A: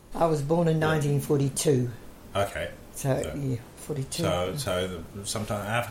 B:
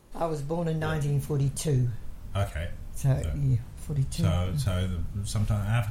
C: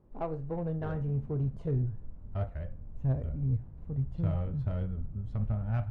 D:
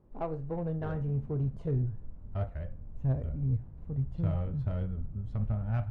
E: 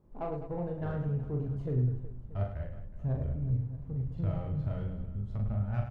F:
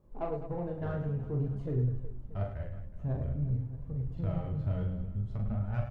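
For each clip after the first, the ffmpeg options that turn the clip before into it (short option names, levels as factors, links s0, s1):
-af "asubboost=boost=11.5:cutoff=120,volume=0.531"
-af "adynamicsmooth=sensitivity=0.5:basefreq=820,volume=0.596"
-af anull
-af "aecho=1:1:40|104|206.4|370.2|632.4:0.631|0.398|0.251|0.158|0.1,volume=0.75"
-af "flanger=delay=1.7:depth=9.6:regen=58:speed=0.51:shape=sinusoidal,volume=1.68"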